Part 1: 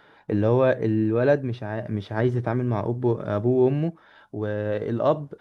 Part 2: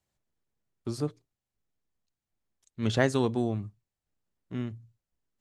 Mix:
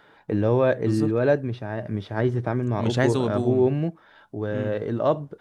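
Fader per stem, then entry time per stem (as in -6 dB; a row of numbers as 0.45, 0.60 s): -0.5, +1.5 dB; 0.00, 0.00 s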